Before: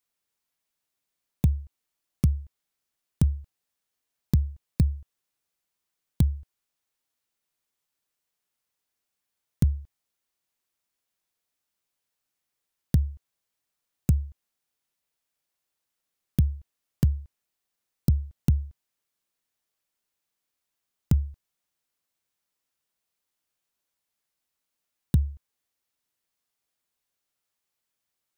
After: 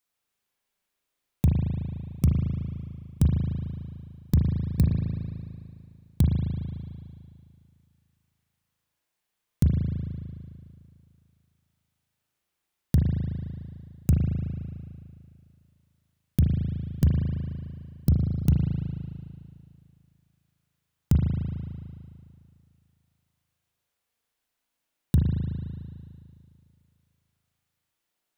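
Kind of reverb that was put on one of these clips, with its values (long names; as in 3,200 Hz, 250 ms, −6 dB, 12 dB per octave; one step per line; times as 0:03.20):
spring reverb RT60 2.3 s, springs 37 ms, chirp 25 ms, DRR −2 dB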